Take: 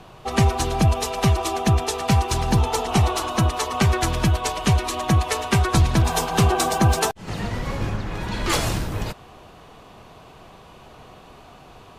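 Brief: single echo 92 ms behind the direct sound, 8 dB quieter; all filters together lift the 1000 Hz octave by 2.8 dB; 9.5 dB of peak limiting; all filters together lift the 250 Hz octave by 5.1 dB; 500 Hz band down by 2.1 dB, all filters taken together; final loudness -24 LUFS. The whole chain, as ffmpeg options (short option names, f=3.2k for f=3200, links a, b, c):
-af "equalizer=f=250:t=o:g=9,equalizer=f=500:t=o:g=-8.5,equalizer=f=1k:t=o:g=6,alimiter=limit=-11dB:level=0:latency=1,aecho=1:1:92:0.398,volume=-2.5dB"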